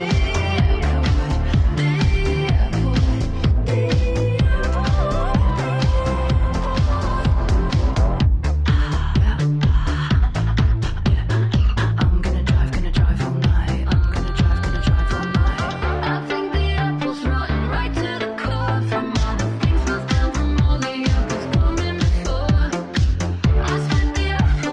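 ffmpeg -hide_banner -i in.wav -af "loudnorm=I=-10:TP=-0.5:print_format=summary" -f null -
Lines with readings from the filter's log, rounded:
Input Integrated:    -19.9 LUFS
Input True Peak:      -7.4 dBTP
Input LRA:             2.3 LU
Input Threshold:     -29.9 LUFS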